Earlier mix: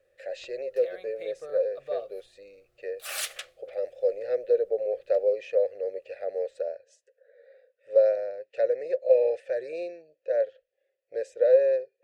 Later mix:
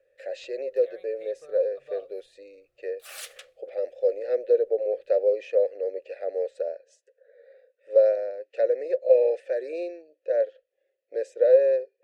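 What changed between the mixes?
speech: add resonant low shelf 220 Hz -9 dB, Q 3; background -7.5 dB

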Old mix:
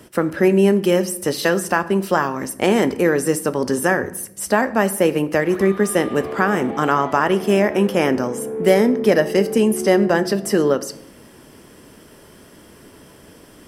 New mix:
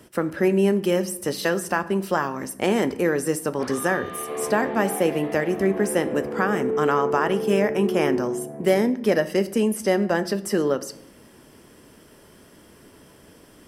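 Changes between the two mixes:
speech -5.0 dB; background: entry -1.90 s

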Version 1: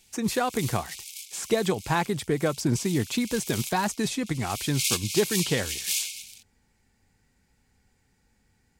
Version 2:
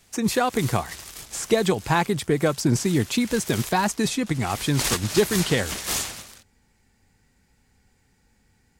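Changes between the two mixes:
speech +4.0 dB; background: remove brick-wall FIR high-pass 2.1 kHz

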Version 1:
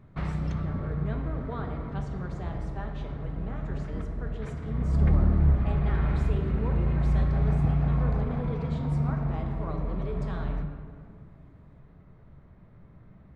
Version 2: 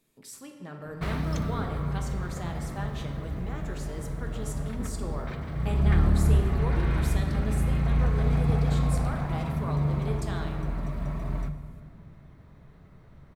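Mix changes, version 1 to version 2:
background: entry +0.85 s; master: remove tape spacing loss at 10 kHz 25 dB

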